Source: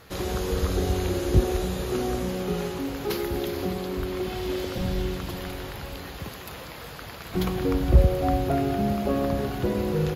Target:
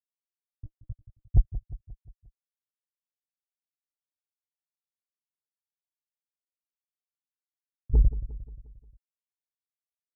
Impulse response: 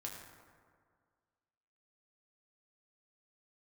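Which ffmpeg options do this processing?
-af "afftfilt=real='re*gte(hypot(re,im),1.26)':imag='im*gte(hypot(re,im),1.26)':win_size=1024:overlap=0.75,lowshelf=f=220:g=3,aecho=1:1:6.5:0.8,aresample=11025,asoftclip=type=tanh:threshold=-17.5dB,aresample=44100,aphaser=in_gain=1:out_gain=1:delay=3.9:decay=0.72:speed=0.84:type=triangular,asuperstop=centerf=2900:order=4:qfactor=0.83,aecho=1:1:177|354|531|708|885:0.2|0.104|0.054|0.0281|0.0146"

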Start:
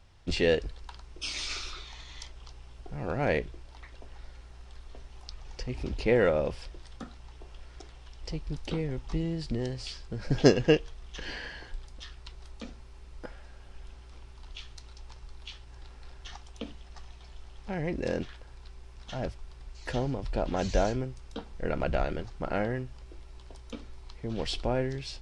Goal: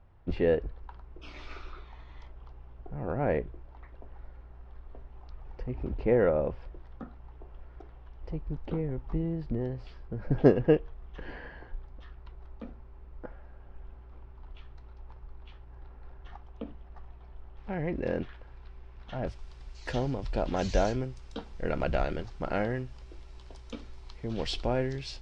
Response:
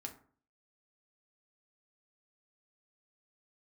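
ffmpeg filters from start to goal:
-af "asetnsamples=n=441:p=0,asendcmd='17.57 lowpass f 2300;19.27 lowpass f 7200',lowpass=1.3k"

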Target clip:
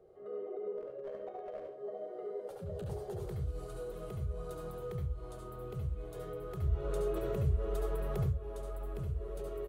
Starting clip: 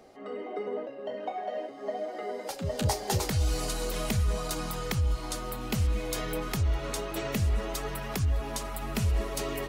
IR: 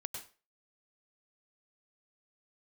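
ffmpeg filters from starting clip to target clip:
-filter_complex "[0:a]firequalizer=gain_entry='entry(160,0);entry(260,-23);entry(370,5);entry(830,-13);entry(1300,-9);entry(2000,-19);entry(3500,-17);entry(5100,-25);entry(8800,-17)':delay=0.05:min_phase=1,acompressor=threshold=-28dB:ratio=6,alimiter=level_in=4.5dB:limit=-24dB:level=0:latency=1:release=59,volume=-4.5dB,asettb=1/sr,asplit=3[a][b][c];[a]atrim=end=0.774[d];[b]atrim=start=0.77:end=1.69,asetpts=PTS-STARTPTS,afade=t=in:d=0.004:c=qsin,afade=t=out:st=0.916:d=0.004:c=qsin,aeval=exprs='clip(val(0),-1,0.02)':c=same[e];[c]atrim=start=1.686[f];[d][e]acrossfade=d=0.004:c1=hsin:c2=qsin[g];[g][f]acrossfade=d=0.004:c1=qsin:c2=hsin,asettb=1/sr,asplit=3[h][i][j];[h]atrim=end=6.624[k];[i]atrim=start=6.62:end=8.26,asetpts=PTS-STARTPTS,afade=t=in:d=0.004:c=qsin,afade=t=out:st=1.636:d=0.004:c=qsin,acontrast=59[l];[j]atrim=start=8.256[m];[k][l]acrossfade=d=0.004:c1=hsin:c2=qsin[n];[n][m]acrossfade=d=0.004:c1=qsin:c2=hsin[o];[1:a]atrim=start_sample=2205,asetrate=61740,aresample=44100[p];[o][p]afir=irnorm=-1:irlink=0,volume=1dB"

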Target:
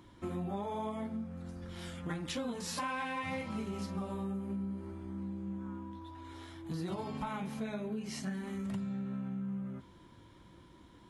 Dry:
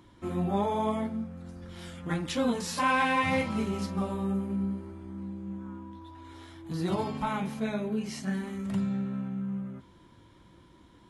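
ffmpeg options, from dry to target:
-af "acompressor=threshold=-34dB:ratio=6,volume=-1dB"

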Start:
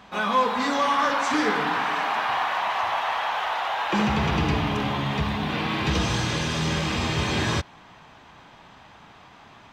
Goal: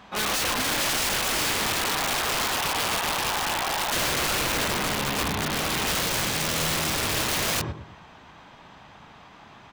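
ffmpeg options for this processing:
-filter_complex "[0:a]asplit=2[a][b];[b]adelay=112,lowpass=f=860:p=1,volume=-6dB,asplit=2[c][d];[d]adelay=112,lowpass=f=860:p=1,volume=0.34,asplit=2[e][f];[f]adelay=112,lowpass=f=860:p=1,volume=0.34,asplit=2[g][h];[h]adelay=112,lowpass=f=860:p=1,volume=0.34[i];[a][c][e][g][i]amix=inputs=5:normalize=0,aeval=exprs='(mod(10.6*val(0)+1,2)-1)/10.6':c=same"

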